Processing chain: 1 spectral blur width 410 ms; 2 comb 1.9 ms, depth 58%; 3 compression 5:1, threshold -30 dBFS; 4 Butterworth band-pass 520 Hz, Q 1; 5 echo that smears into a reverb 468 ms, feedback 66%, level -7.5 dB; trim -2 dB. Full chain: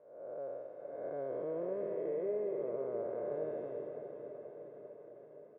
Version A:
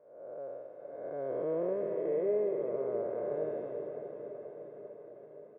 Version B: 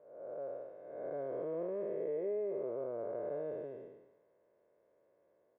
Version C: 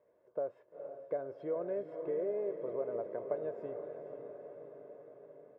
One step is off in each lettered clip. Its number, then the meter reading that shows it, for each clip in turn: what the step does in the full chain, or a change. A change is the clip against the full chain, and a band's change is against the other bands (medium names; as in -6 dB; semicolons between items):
3, mean gain reduction 2.0 dB; 5, echo-to-direct -5.0 dB to none; 1, 1 kHz band +2.0 dB